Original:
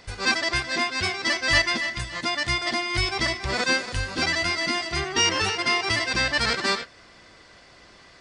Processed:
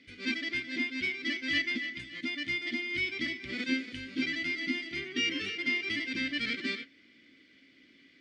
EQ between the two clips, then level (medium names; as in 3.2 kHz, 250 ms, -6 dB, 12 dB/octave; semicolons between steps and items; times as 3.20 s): vowel filter i; +4.5 dB